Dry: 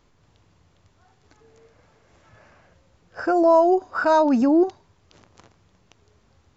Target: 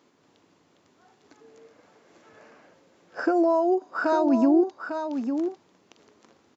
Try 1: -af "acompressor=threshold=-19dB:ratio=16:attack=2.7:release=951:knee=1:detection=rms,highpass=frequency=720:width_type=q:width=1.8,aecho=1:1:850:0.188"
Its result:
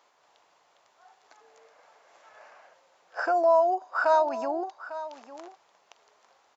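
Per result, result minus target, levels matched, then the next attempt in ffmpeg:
250 Hz band −16.5 dB; echo-to-direct −7 dB
-af "acompressor=threshold=-19dB:ratio=16:attack=2.7:release=951:knee=1:detection=rms,highpass=frequency=270:width_type=q:width=1.8,aecho=1:1:850:0.188"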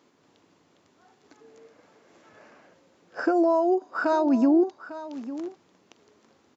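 echo-to-direct −7 dB
-af "acompressor=threshold=-19dB:ratio=16:attack=2.7:release=951:knee=1:detection=rms,highpass=frequency=270:width_type=q:width=1.8,aecho=1:1:850:0.422"

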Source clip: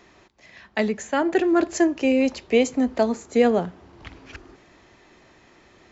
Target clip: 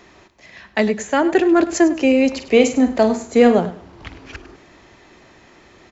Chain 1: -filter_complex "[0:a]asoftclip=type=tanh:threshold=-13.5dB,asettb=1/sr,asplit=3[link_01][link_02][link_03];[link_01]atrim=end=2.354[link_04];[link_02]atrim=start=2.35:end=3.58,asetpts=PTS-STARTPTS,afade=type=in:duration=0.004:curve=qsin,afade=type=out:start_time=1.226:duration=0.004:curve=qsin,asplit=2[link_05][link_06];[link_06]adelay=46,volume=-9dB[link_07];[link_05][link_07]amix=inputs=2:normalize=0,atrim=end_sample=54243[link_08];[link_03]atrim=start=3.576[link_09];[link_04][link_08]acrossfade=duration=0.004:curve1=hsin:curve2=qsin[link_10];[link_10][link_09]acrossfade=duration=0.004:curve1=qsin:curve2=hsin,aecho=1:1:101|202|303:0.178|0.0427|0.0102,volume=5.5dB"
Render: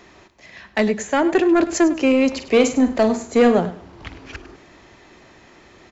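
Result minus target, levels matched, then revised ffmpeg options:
soft clipping: distortion +13 dB
-filter_complex "[0:a]asoftclip=type=tanh:threshold=-5dB,asettb=1/sr,asplit=3[link_01][link_02][link_03];[link_01]atrim=end=2.354[link_04];[link_02]atrim=start=2.35:end=3.58,asetpts=PTS-STARTPTS,afade=type=in:duration=0.004:curve=qsin,afade=type=out:start_time=1.226:duration=0.004:curve=qsin,asplit=2[link_05][link_06];[link_06]adelay=46,volume=-9dB[link_07];[link_05][link_07]amix=inputs=2:normalize=0,atrim=end_sample=54243[link_08];[link_03]atrim=start=3.576[link_09];[link_04][link_08]acrossfade=duration=0.004:curve1=hsin:curve2=qsin[link_10];[link_10][link_09]acrossfade=duration=0.004:curve1=qsin:curve2=hsin,aecho=1:1:101|202|303:0.178|0.0427|0.0102,volume=5.5dB"

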